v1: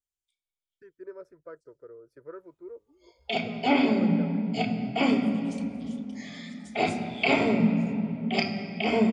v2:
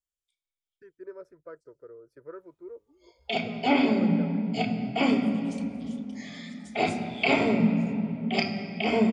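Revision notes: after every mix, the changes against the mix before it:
nothing changed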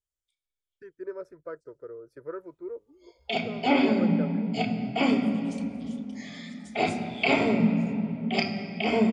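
first voice +5.5 dB

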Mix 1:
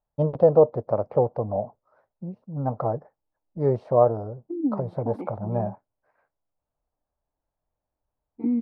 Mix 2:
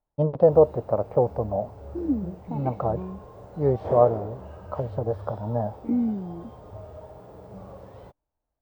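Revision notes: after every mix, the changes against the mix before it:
second voice: entry −2.55 s
background: unmuted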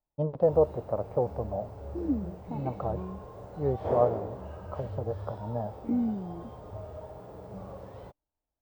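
first voice −6.5 dB
second voice −4.0 dB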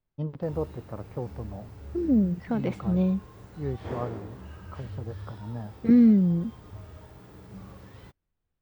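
second voice: remove formant filter u
master: add drawn EQ curve 320 Hz 0 dB, 600 Hz −14 dB, 1,800 Hz +6 dB

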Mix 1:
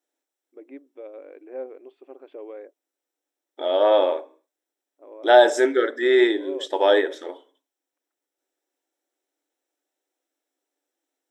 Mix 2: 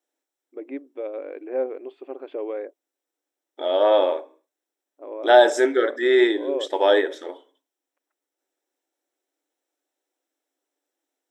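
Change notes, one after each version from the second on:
first voice +8.5 dB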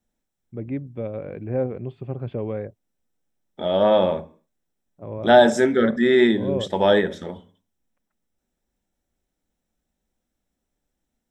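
master: remove linear-phase brick-wall high-pass 270 Hz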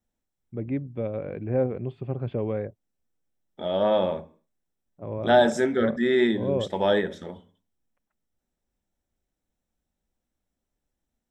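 second voice −5.0 dB

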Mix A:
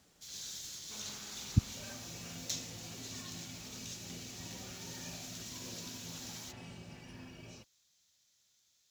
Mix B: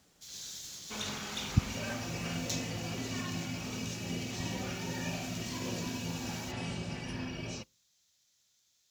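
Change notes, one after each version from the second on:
second sound +11.0 dB
reverb: on, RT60 0.30 s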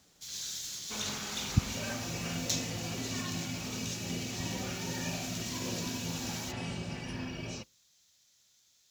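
first sound +5.0 dB

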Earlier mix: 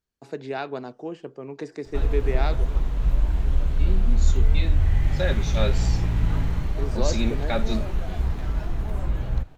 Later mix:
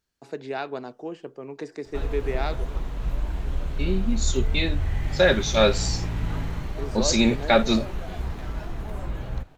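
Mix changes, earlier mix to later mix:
second voice +9.5 dB
master: add low-shelf EQ 150 Hz −7 dB

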